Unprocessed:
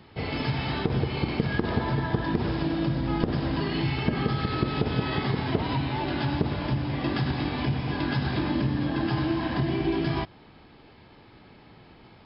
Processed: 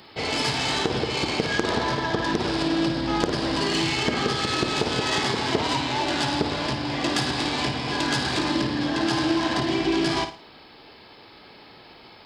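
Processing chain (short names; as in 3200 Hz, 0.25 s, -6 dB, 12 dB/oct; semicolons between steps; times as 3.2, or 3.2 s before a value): self-modulated delay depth 0.13 ms; tone controls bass -12 dB, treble +12 dB; flutter echo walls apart 9.4 m, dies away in 0.35 s; gain +5.5 dB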